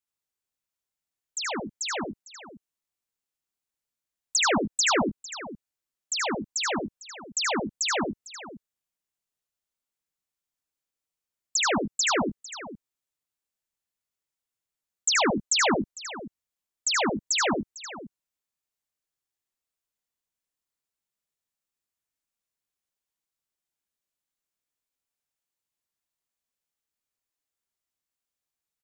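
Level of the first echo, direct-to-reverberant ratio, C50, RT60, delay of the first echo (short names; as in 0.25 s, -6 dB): -4.5 dB, none, none, none, 76 ms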